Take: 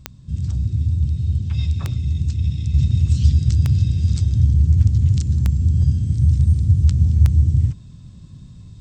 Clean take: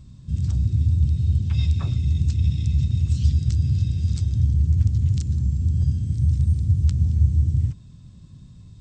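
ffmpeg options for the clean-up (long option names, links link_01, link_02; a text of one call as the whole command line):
ffmpeg -i in.wav -af "adeclick=threshold=4,asetnsamples=nb_out_samples=441:pad=0,asendcmd='2.74 volume volume -4.5dB',volume=0dB" out.wav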